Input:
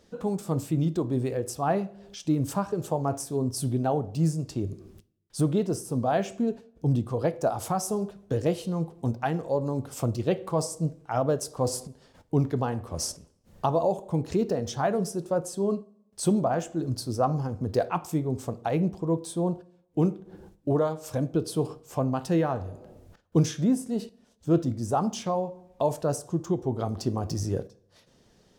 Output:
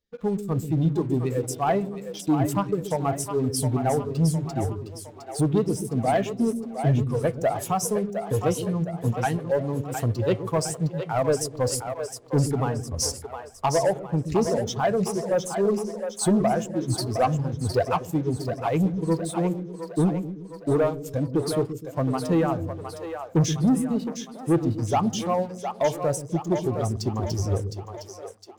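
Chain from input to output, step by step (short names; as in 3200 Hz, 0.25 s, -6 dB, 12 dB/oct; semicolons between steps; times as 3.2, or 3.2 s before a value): per-bin expansion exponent 1.5; sample leveller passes 2; split-band echo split 410 Hz, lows 0.127 s, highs 0.711 s, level -7.5 dB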